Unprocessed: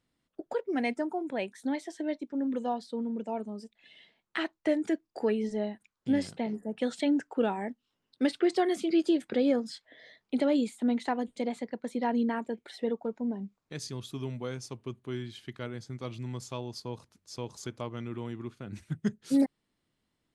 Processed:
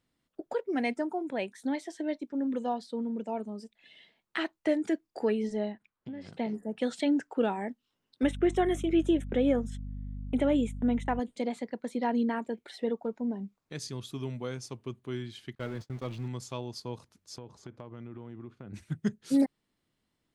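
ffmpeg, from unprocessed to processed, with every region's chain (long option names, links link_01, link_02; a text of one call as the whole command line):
ffmpeg -i in.wav -filter_complex "[0:a]asettb=1/sr,asplit=3[link_01][link_02][link_03];[link_01]atrim=end=5.724[link_04];[link_02]atrim=start=5.72:end=6.33,asetpts=PTS-STARTPTS,afade=type=in:duration=0.004:curve=qsin,afade=type=out:start_time=0.606:duration=0.004:curve=qsin,lowpass=2900,acompressor=threshold=-37dB:ratio=10:attack=3.2:release=140:knee=1:detection=peak[link_05];[link_03]atrim=start=6.326[link_06];[link_04][link_05]acrossfade=duration=0.004:curve1=hsin:curve2=qsin[link_07];[link_07][link_06]acrossfade=duration=0.004:curve1=qsin:curve2=hsin,asettb=1/sr,asplit=3[link_08][link_09][link_10];[link_08]atrim=end=8.234[link_11];[link_09]atrim=start=8.23:end=11.2,asetpts=PTS-STARTPTS,afade=type=in:duration=0.004:curve=qsin,afade=type=out:start_time=2.966:duration=0.004:curve=qsin,agate=range=-31dB:threshold=-44dB:ratio=16:release=100:detection=peak,aeval=exprs='val(0)+0.0141*(sin(2*PI*50*n/s)+sin(2*PI*2*50*n/s)/2+sin(2*PI*3*50*n/s)/3+sin(2*PI*4*50*n/s)/4+sin(2*PI*5*50*n/s)/5)':channel_layout=same,asuperstop=centerf=4600:order=4:qfactor=2[link_12];[link_10]atrim=start=11.196[link_13];[link_11][link_12]acrossfade=duration=0.004:curve1=hsin:curve2=qsin[link_14];[link_14][link_13]acrossfade=duration=0.004:curve1=qsin:curve2=hsin,asettb=1/sr,asplit=3[link_15][link_16][link_17];[link_15]atrim=end=15.554[link_18];[link_16]atrim=start=15.55:end=16.28,asetpts=PTS-STARTPTS,afade=type=in:duration=0.004:curve=qsin,afade=type=out:start_time=0.726:duration=0.004:curve=qsin,aeval=exprs='val(0)+0.5*0.0075*sgn(val(0))':channel_layout=same,agate=range=-33dB:threshold=-42dB:ratio=16:release=100:detection=peak,lowpass=frequency=3300:poles=1[link_19];[link_17]atrim=start=16.276[link_20];[link_18][link_19]acrossfade=duration=0.004:curve1=hsin:curve2=qsin[link_21];[link_21][link_20]acrossfade=duration=0.004:curve1=qsin:curve2=hsin,asettb=1/sr,asplit=3[link_22][link_23][link_24];[link_22]atrim=end=17.384[link_25];[link_23]atrim=start=17.38:end=18.74,asetpts=PTS-STARTPTS,afade=type=in:duration=0.004:curve=qsin,afade=type=out:start_time=1.356:duration=0.004:curve=qsin,lowpass=frequency=1300:poles=1,acompressor=threshold=-39dB:ratio=6:attack=3.2:release=140:knee=1:detection=peak[link_26];[link_24]atrim=start=18.736[link_27];[link_25][link_26]acrossfade=duration=0.004:curve1=hsin:curve2=qsin[link_28];[link_28][link_27]acrossfade=duration=0.004:curve1=qsin:curve2=hsin" out.wav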